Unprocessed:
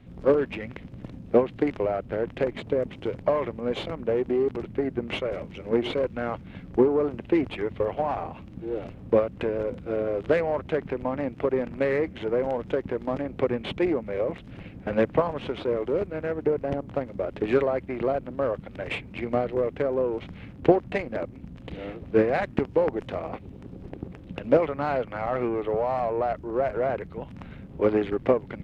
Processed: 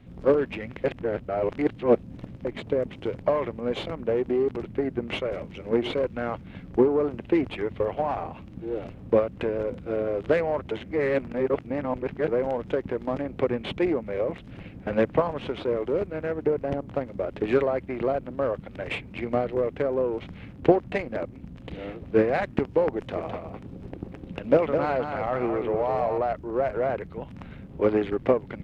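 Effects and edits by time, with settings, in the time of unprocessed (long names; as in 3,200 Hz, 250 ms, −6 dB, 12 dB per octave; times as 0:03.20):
0:00.84–0:02.45: reverse
0:10.71–0:12.28: reverse
0:22.95–0:26.18: single-tap delay 208 ms −6.5 dB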